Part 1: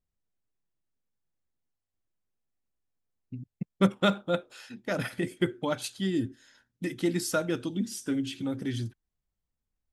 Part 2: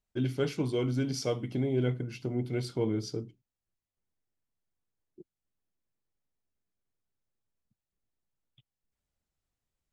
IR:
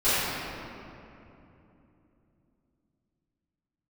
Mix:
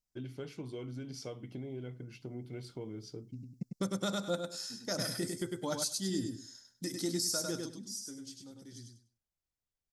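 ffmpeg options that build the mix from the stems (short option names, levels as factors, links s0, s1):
-filter_complex "[0:a]highshelf=f=3800:t=q:w=3:g=11.5,dynaudnorm=f=350:g=11:m=3.76,volume=0.237,afade=t=out:st=7.51:d=0.24:silence=0.281838,asplit=2[s0][s1];[s1]volume=0.562[s2];[1:a]acompressor=threshold=0.0316:ratio=6,volume=0.376[s3];[s2]aecho=0:1:100|200|300:1|0.21|0.0441[s4];[s0][s3][s4]amix=inputs=3:normalize=0,alimiter=limit=0.0708:level=0:latency=1:release=225"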